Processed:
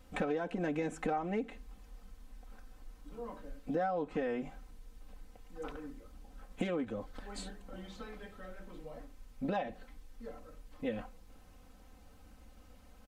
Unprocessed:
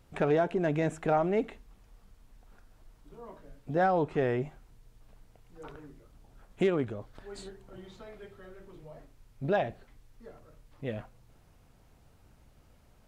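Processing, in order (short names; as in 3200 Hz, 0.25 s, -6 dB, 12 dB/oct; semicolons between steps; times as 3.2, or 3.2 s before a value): comb 3.9 ms, depth 96%; compressor 5:1, threshold -32 dBFS, peak gain reduction 13.5 dB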